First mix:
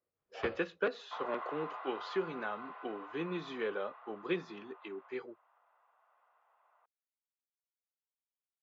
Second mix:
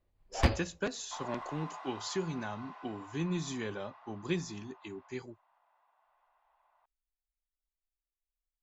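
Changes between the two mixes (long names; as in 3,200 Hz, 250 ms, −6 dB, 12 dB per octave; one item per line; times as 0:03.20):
speech: remove high-pass filter 250 Hz 12 dB per octave
first sound +10.5 dB
master: remove loudspeaker in its box 170–3,400 Hz, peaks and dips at 250 Hz −4 dB, 470 Hz +9 dB, 910 Hz −3 dB, 1,300 Hz +8 dB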